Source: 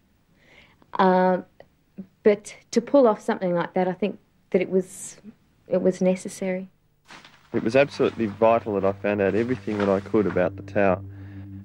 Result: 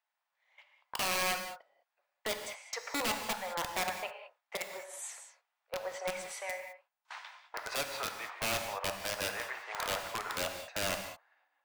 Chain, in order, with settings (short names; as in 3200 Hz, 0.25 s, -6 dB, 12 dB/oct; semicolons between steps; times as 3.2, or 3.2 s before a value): steep high-pass 720 Hz 36 dB/oct; gate -50 dBFS, range -15 dB; high shelf 2800 Hz -9 dB; in parallel at -0.5 dB: compressor 16:1, threshold -39 dBFS, peak gain reduction 22 dB; on the sum: limiter -19 dBFS, peak gain reduction 8 dB; wrapped overs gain 23 dB; non-linear reverb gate 0.23 s flat, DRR 5.5 dB; gain -4 dB